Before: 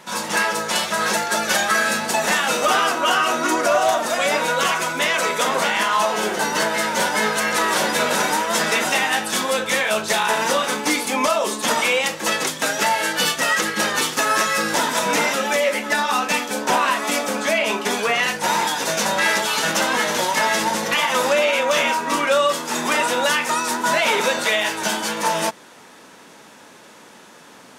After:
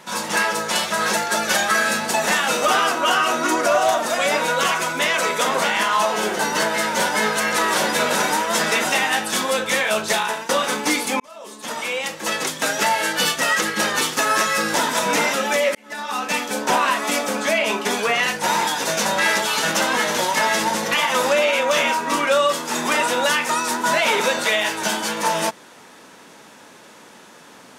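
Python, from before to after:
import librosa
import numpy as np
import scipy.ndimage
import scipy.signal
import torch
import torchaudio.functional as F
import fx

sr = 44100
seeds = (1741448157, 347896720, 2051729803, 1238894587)

y = fx.edit(x, sr, fx.fade_out_to(start_s=10.14, length_s=0.35, floor_db=-18.0),
    fx.fade_in_span(start_s=11.2, length_s=1.48),
    fx.fade_in_span(start_s=15.75, length_s=0.72), tone=tone)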